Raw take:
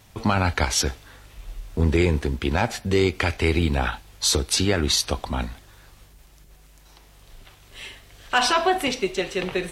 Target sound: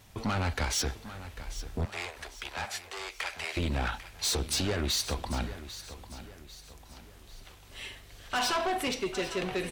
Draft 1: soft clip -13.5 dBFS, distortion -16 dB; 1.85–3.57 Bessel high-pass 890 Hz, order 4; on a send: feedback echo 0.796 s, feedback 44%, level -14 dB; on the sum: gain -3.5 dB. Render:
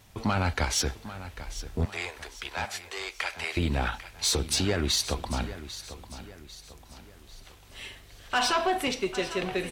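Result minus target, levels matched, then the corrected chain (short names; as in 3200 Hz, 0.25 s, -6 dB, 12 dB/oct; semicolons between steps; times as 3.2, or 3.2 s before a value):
soft clip: distortion -8 dB
soft clip -21.5 dBFS, distortion -8 dB; 1.85–3.57 Bessel high-pass 890 Hz, order 4; on a send: feedback echo 0.796 s, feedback 44%, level -14 dB; on the sum: gain -3.5 dB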